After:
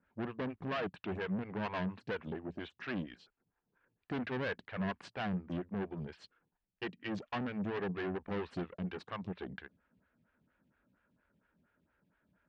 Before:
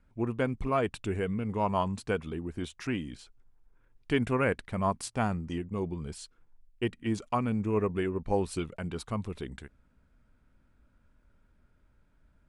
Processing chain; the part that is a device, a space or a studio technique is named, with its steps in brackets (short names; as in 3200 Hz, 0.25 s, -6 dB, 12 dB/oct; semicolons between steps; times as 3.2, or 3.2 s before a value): vibe pedal into a guitar amplifier (photocell phaser 4.3 Hz; tube stage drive 37 dB, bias 0.75; speaker cabinet 100–4400 Hz, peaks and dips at 180 Hz +6 dB, 1700 Hz +7 dB, 2800 Hz +4 dB); gain +2.5 dB